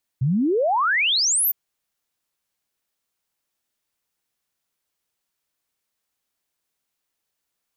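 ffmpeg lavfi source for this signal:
ffmpeg -f lavfi -i "aevalsrc='0.141*clip(min(t,1.31-t)/0.01,0,1)*sin(2*PI*120*1.31/log(15000/120)*(exp(log(15000/120)*t/1.31)-1))':duration=1.31:sample_rate=44100" out.wav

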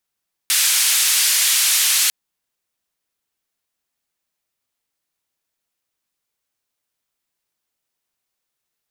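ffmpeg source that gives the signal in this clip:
ffmpeg -f lavfi -i "anoisesrc=color=white:duration=1.6:sample_rate=44100:seed=1,highpass=frequency=2100,lowpass=frequency=12000,volume=-8.1dB" out.wav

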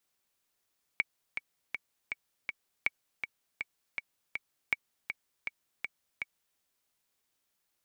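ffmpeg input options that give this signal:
ffmpeg -f lavfi -i "aevalsrc='pow(10,(-13.5-7.5*gte(mod(t,5*60/161),60/161))/20)*sin(2*PI*2260*mod(t,60/161))*exp(-6.91*mod(t,60/161)/0.03)':duration=5.59:sample_rate=44100" out.wav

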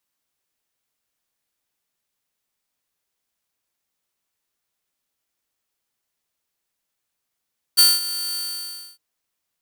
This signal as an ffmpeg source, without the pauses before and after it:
ffmpeg -f lavfi -i "aevalsrc='0.473*(2*mod(4550*t,1)-1)':duration=1.207:sample_rate=44100,afade=type=in:duration=0.022,afade=type=out:start_time=0.022:duration=0.204:silence=0.168,afade=type=out:start_time=0.58:duration=0.627" out.wav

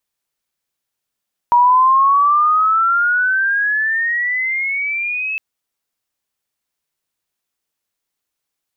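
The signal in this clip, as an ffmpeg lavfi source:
ffmpeg -f lavfi -i "aevalsrc='pow(10,(-7.5-11.5*t/3.86)/20)*sin(2*PI*953*3.86/(17.5*log(2)/12)*(exp(17.5*log(2)/12*t/3.86)-1))':duration=3.86:sample_rate=44100" out.wav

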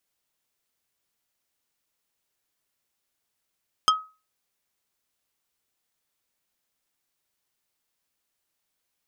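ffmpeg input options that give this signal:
ffmpeg -f lavfi -i "aevalsrc='0.224*pow(10,-3*t/0.31)*sin(2*PI*1270*t)+0.158*pow(10,-3*t/0.103)*sin(2*PI*3175*t)+0.112*pow(10,-3*t/0.059)*sin(2*PI*5080*t)+0.0794*pow(10,-3*t/0.045)*sin(2*PI*6350*t)+0.0562*pow(10,-3*t/0.033)*sin(2*PI*8255*t)':duration=0.45:sample_rate=44100" out.wav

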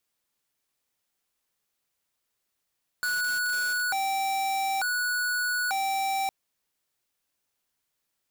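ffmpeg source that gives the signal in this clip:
ffmpeg -f lavfi -i "aevalsrc='0.0422*(2*lt(mod((1124*t+346/0.56*(0.5-abs(mod(0.56*t,1)-0.5))),1),0.5)-1)':duration=3.26:sample_rate=44100" out.wav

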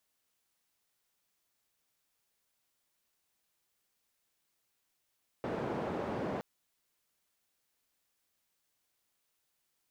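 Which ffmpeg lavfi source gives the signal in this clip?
ffmpeg -f lavfi -i "anoisesrc=color=white:duration=0.97:sample_rate=44100:seed=1,highpass=frequency=120,lowpass=frequency=610,volume=-15.7dB" out.wav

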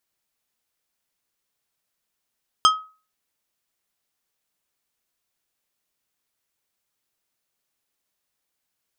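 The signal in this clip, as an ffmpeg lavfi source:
ffmpeg -f lavfi -i "aevalsrc='0.335*pow(10,-3*t/0.35)*sin(2*PI*1270*t)+0.211*pow(10,-3*t/0.184)*sin(2*PI*3175*t)+0.133*pow(10,-3*t/0.133)*sin(2*PI*5080*t)+0.0841*pow(10,-3*t/0.113)*sin(2*PI*6350*t)+0.0531*pow(10,-3*t/0.094)*sin(2*PI*8255*t)':duration=0.89:sample_rate=44100" out.wav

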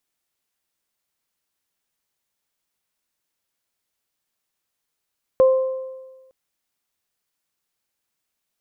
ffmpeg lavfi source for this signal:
ffmpeg -f lavfi -i "aevalsrc='0.355*pow(10,-3*t/1.3)*sin(2*PI*523*t)+0.0531*pow(10,-3*t/1.11)*sin(2*PI*1046*t)':duration=0.91:sample_rate=44100" out.wav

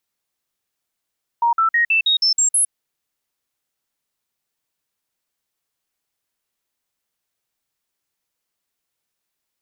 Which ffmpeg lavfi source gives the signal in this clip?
ffmpeg -f lavfi -i "aevalsrc='0.224*clip(min(mod(t,0.16),0.11-mod(t,0.16))/0.005,0,1)*sin(2*PI*939*pow(2,floor(t/0.16)/2)*mod(t,0.16))':duration=1.28:sample_rate=44100" out.wav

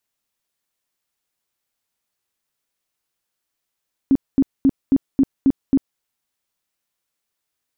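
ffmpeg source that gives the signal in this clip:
ffmpeg -f lavfi -i "aevalsrc='0.316*sin(2*PI*271*mod(t,0.27))*lt(mod(t,0.27),12/271)':duration=1.89:sample_rate=44100" out.wav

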